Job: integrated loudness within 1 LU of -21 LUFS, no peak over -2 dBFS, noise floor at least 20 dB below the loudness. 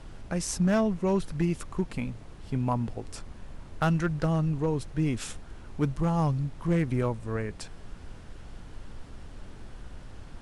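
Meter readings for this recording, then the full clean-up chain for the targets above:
clipped 0.6%; flat tops at -18.5 dBFS; noise floor -46 dBFS; noise floor target -49 dBFS; loudness -29.0 LUFS; peak -18.5 dBFS; loudness target -21.0 LUFS
-> clip repair -18.5 dBFS; noise print and reduce 6 dB; gain +8 dB

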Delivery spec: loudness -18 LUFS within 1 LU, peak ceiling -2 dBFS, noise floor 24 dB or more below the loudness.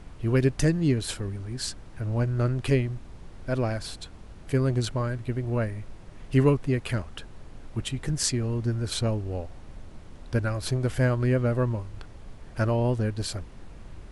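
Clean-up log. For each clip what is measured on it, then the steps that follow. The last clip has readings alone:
noise floor -45 dBFS; noise floor target -52 dBFS; loudness -27.5 LUFS; peak -9.0 dBFS; loudness target -18.0 LUFS
-> noise print and reduce 7 dB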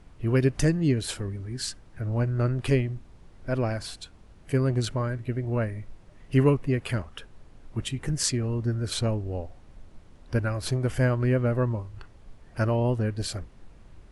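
noise floor -52 dBFS; loudness -27.5 LUFS; peak -9.0 dBFS; loudness target -18.0 LUFS
-> gain +9.5 dB; limiter -2 dBFS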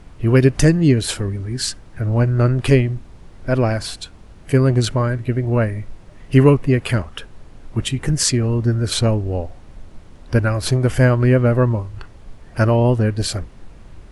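loudness -18.0 LUFS; peak -2.0 dBFS; noise floor -43 dBFS

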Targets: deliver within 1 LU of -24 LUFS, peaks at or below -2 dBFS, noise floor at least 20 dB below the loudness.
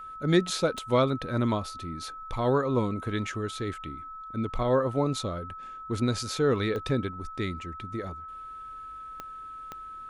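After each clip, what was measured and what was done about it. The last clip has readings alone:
clicks 4; steady tone 1300 Hz; tone level -39 dBFS; loudness -29.0 LUFS; peak -10.5 dBFS; loudness target -24.0 LUFS
-> de-click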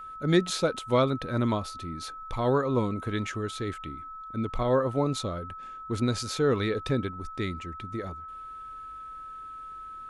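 clicks 0; steady tone 1300 Hz; tone level -39 dBFS
-> notch 1300 Hz, Q 30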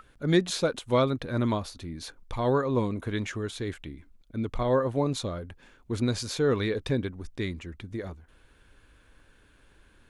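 steady tone none; loudness -29.0 LUFS; peak -10.5 dBFS; loudness target -24.0 LUFS
-> gain +5 dB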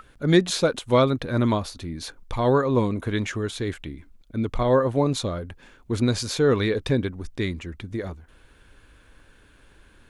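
loudness -24.0 LUFS; peak -5.5 dBFS; noise floor -55 dBFS

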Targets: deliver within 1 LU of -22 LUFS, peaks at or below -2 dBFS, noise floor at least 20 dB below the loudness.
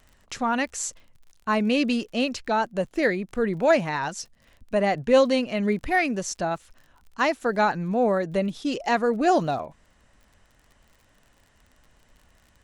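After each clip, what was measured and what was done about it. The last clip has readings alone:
ticks 41/s; loudness -24.5 LUFS; peak -8.0 dBFS; loudness target -22.0 LUFS
-> de-click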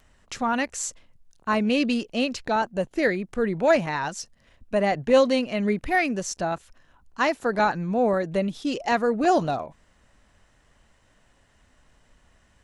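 ticks 0.079/s; loudness -24.5 LUFS; peak -8.0 dBFS; loudness target -22.0 LUFS
-> gain +2.5 dB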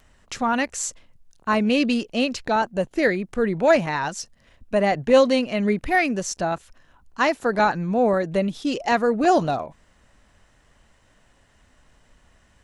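loudness -22.0 LUFS; peak -5.5 dBFS; noise floor -60 dBFS

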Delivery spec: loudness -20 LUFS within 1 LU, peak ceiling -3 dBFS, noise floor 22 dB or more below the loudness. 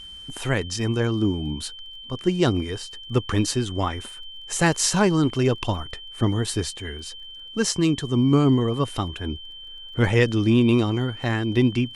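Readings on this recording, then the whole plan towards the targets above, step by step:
ticks 21/s; steady tone 3100 Hz; tone level -38 dBFS; loudness -23.0 LUFS; peak -7.0 dBFS; loudness target -20.0 LUFS
-> de-click; notch 3100 Hz, Q 30; gain +3 dB

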